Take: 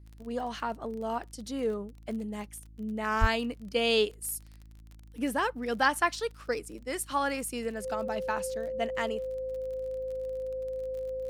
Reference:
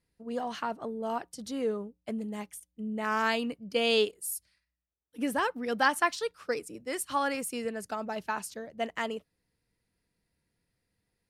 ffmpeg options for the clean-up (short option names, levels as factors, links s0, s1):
-filter_complex "[0:a]adeclick=t=4,bandreject=f=53.9:t=h:w=4,bandreject=f=107.8:t=h:w=4,bandreject=f=161.7:t=h:w=4,bandreject=f=215.6:t=h:w=4,bandreject=f=269.5:t=h:w=4,bandreject=f=323.4:t=h:w=4,bandreject=f=520:w=30,asplit=3[s0][s1][s2];[s0]afade=t=out:st=3.2:d=0.02[s3];[s1]highpass=f=140:w=0.5412,highpass=f=140:w=1.3066,afade=t=in:st=3.2:d=0.02,afade=t=out:st=3.32:d=0.02[s4];[s2]afade=t=in:st=3.32:d=0.02[s5];[s3][s4][s5]amix=inputs=3:normalize=0"